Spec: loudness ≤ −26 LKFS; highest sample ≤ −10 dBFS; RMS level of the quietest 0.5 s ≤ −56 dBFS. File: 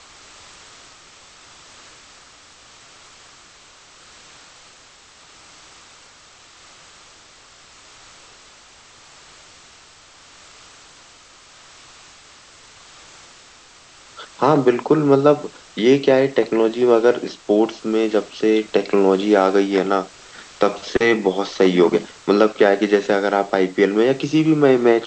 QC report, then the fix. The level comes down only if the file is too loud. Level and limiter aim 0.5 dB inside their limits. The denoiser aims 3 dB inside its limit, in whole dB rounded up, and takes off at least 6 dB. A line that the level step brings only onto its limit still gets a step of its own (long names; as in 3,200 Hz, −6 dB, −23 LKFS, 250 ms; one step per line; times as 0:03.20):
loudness −17.5 LKFS: out of spec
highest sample −3.0 dBFS: out of spec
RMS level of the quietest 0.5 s −47 dBFS: out of spec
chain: broadband denoise 6 dB, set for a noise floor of −47 dBFS
level −9 dB